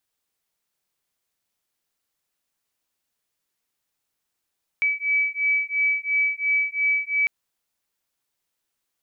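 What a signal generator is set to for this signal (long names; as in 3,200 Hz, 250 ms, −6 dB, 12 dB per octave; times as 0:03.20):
two tones that beat 2,290 Hz, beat 2.9 Hz, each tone −23 dBFS 2.45 s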